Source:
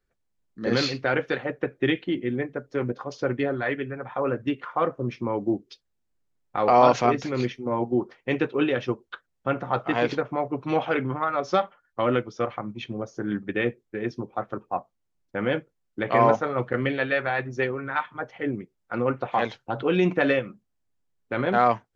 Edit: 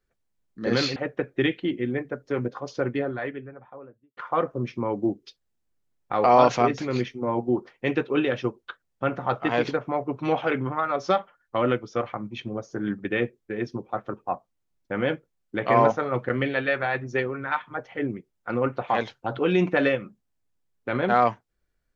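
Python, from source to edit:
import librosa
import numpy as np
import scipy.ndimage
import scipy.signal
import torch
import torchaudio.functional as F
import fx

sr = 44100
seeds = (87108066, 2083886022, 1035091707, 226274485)

y = fx.studio_fade_out(x, sr, start_s=3.1, length_s=1.51)
y = fx.edit(y, sr, fx.cut(start_s=0.96, length_s=0.44), tone=tone)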